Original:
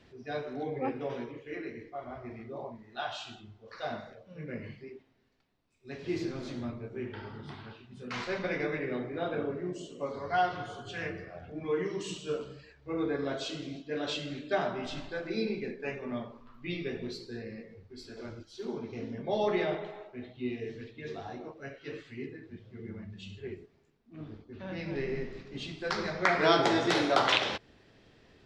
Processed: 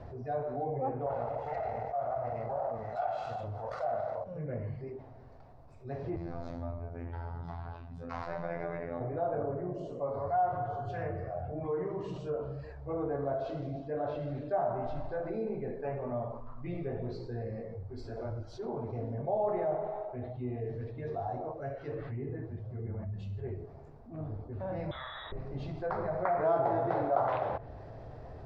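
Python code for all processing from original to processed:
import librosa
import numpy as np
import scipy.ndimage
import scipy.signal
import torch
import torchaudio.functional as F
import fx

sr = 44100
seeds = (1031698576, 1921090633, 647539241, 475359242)

y = fx.chain(x, sr, fx.lower_of_two(delay_ms=1.5),
    fx.highpass(hz=310.0, slope=6),
    fx.env_flatten(amount_pct=50), at=(1.06, 4.24))
y = fx.chain(y, sr, fx.peak_eq(hz=390.0, db=-8.5, octaves=1.2),
    fx.robotise(hz=85.2), at=(6.16, 9.01))
y = fx.chain(y, sr, fx.air_absorb(metres=310.0),
    fx.env_flatten(amount_pct=50), at=(21.95, 22.46))
y = fx.chain(y, sr, fx.freq_invert(carrier_hz=3800),
    fx.env_flatten(amount_pct=70), at=(24.91, 25.32))
y = fx.env_lowpass_down(y, sr, base_hz=2300.0, full_db=-30.5)
y = fx.curve_eq(y, sr, hz=(130.0, 190.0, 370.0, 680.0, 3100.0, 4800.0, 7700.0), db=(0, -12, -11, 2, -28, -22, -26))
y = fx.env_flatten(y, sr, amount_pct=50)
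y = y * 10.0 ** (-2.0 / 20.0)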